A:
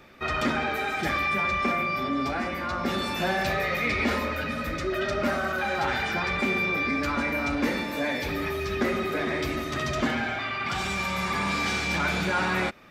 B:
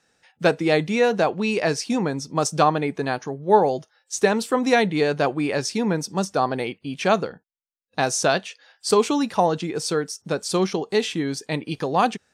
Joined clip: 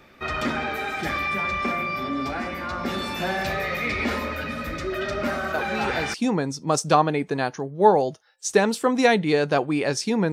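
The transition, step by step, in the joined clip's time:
A
5.54 add B from 1.22 s 0.60 s -7.5 dB
6.14 switch to B from 1.82 s

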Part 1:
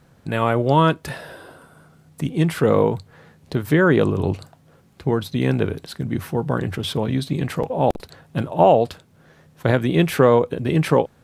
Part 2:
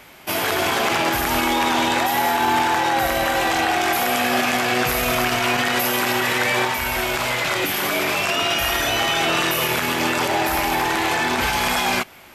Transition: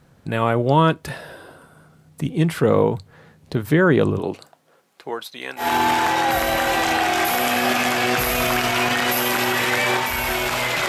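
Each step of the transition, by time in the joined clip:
part 1
4.18–5.68 HPF 240 Hz -> 1100 Hz
5.62 switch to part 2 from 2.3 s, crossfade 0.12 s

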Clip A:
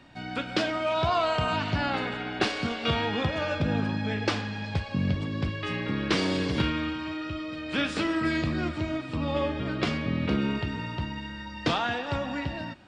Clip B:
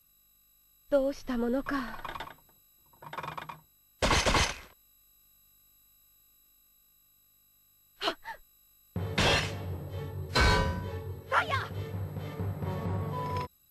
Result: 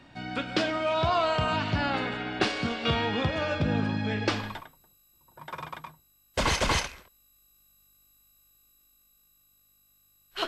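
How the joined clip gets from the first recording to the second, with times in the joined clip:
clip A
4.43 switch to clip B from 2.08 s, crossfade 0.36 s equal-power

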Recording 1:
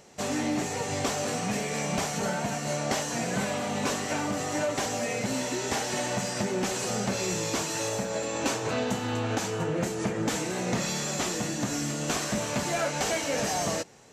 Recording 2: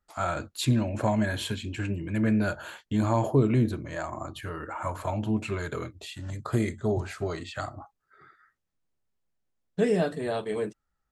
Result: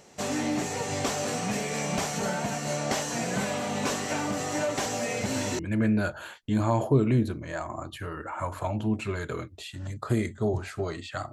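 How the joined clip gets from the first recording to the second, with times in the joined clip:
recording 1
5.17 add recording 2 from 1.6 s 0.42 s -6.5 dB
5.59 switch to recording 2 from 2.02 s

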